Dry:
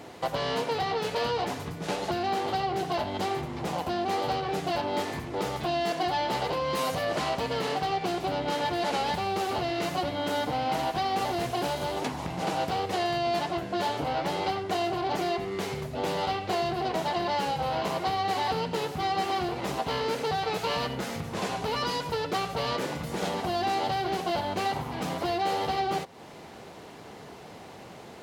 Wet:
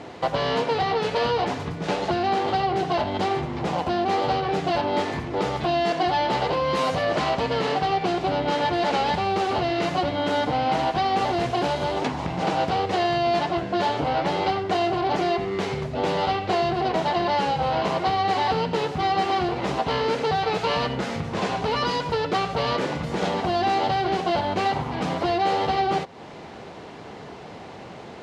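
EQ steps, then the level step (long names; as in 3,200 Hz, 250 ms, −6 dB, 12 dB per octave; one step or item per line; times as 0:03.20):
high-frequency loss of the air 90 metres
+6.0 dB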